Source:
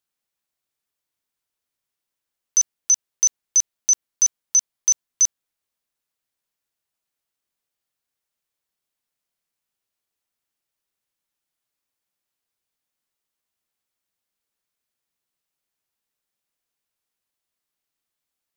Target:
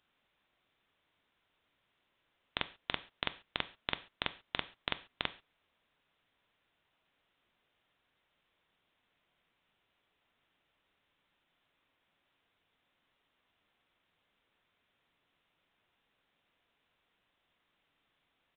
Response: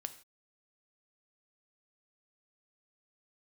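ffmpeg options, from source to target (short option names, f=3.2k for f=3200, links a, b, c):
-filter_complex "[0:a]asplit=2[a][b];[1:a]atrim=start_sample=2205,asetrate=52920,aresample=44100[c];[b][c]afir=irnorm=-1:irlink=0,volume=11dB[d];[a][d]amix=inputs=2:normalize=0,aresample=8000,aresample=44100,volume=2.5dB"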